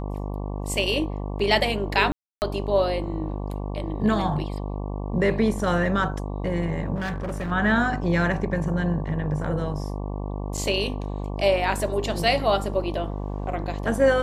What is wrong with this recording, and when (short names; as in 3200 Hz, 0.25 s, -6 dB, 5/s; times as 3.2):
buzz 50 Hz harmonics 23 -30 dBFS
2.12–2.42 gap 0.299 s
6.95–7.52 clipped -25.5 dBFS
10.57–10.58 gap 5.9 ms